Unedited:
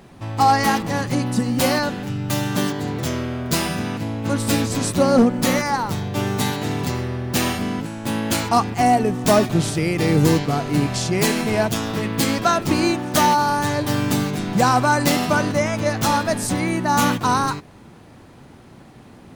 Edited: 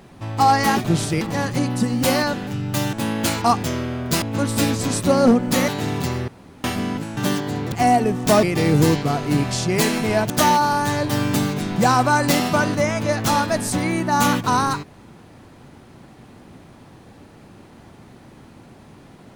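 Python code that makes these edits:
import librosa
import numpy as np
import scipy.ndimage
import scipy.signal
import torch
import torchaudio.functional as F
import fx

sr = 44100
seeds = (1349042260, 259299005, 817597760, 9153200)

y = fx.edit(x, sr, fx.swap(start_s=2.49, length_s=0.55, other_s=8.0, other_length_s=0.71),
    fx.cut(start_s=3.62, length_s=0.51),
    fx.cut(start_s=5.59, length_s=0.92),
    fx.room_tone_fill(start_s=7.11, length_s=0.36),
    fx.move(start_s=9.42, length_s=0.44, to_s=0.77),
    fx.cut(start_s=11.73, length_s=1.34), tone=tone)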